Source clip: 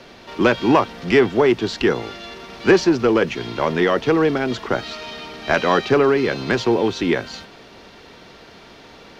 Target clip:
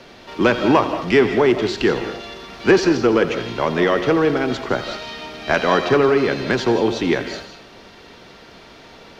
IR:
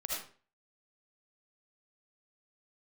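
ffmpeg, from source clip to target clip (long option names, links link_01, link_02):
-filter_complex "[0:a]asplit=2[link_01][link_02];[1:a]atrim=start_sample=2205,adelay=85[link_03];[link_02][link_03]afir=irnorm=-1:irlink=0,volume=-10.5dB[link_04];[link_01][link_04]amix=inputs=2:normalize=0"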